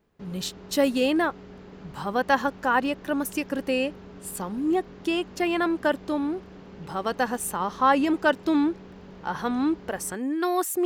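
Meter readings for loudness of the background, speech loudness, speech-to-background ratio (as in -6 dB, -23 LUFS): -45.5 LUFS, -26.0 LUFS, 19.5 dB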